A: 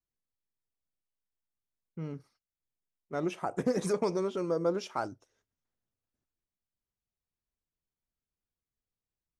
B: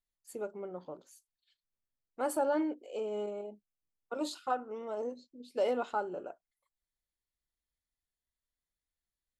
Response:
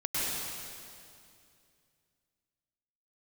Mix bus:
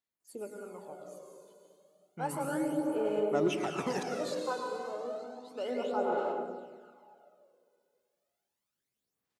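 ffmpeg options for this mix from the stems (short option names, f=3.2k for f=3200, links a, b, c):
-filter_complex "[0:a]lowshelf=f=330:g=-7.5,asoftclip=type=tanh:threshold=-28dB,adelay=200,volume=0.5dB,asplit=3[a][b][c];[a]atrim=end=4.03,asetpts=PTS-STARTPTS,afade=t=out:st=4.026:d=0.004:c=hsin[d];[b]atrim=start=4.03:end=5.5,asetpts=PTS-STARTPTS,volume=0[e];[c]atrim=start=5.5,asetpts=PTS-STARTPTS,afade=t=in:d=0.004:c=hsin[f];[d][e][f]concat=n=3:v=0:a=1,asplit=2[g][h];[h]volume=-8dB[i];[1:a]volume=-7.5dB,asplit=2[j][k];[k]volume=-5.5dB[l];[2:a]atrim=start_sample=2205[m];[i][l]amix=inputs=2:normalize=0[n];[n][m]afir=irnorm=-1:irlink=0[o];[g][j][o]amix=inputs=3:normalize=0,highpass=160,aphaser=in_gain=1:out_gain=1:delay=2:decay=0.55:speed=0.32:type=sinusoidal"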